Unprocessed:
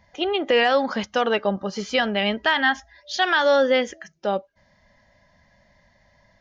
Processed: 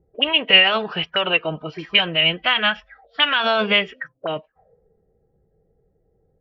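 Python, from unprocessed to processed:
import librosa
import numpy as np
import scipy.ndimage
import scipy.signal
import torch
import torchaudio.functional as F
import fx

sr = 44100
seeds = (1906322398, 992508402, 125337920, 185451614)

y = fx.pitch_keep_formants(x, sr, semitones=-4.0)
y = fx.envelope_lowpass(y, sr, base_hz=340.0, top_hz=2800.0, q=7.1, full_db=-24.0, direction='up')
y = y * 10.0 ** (-3.0 / 20.0)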